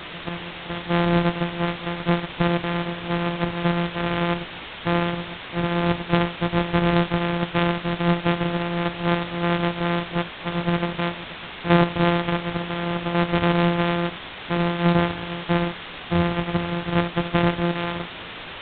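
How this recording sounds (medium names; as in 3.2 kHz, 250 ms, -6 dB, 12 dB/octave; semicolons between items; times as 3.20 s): a buzz of ramps at a fixed pitch in blocks of 256 samples; random-step tremolo 3.5 Hz, depth 80%; a quantiser's noise floor 6-bit, dither triangular; G.726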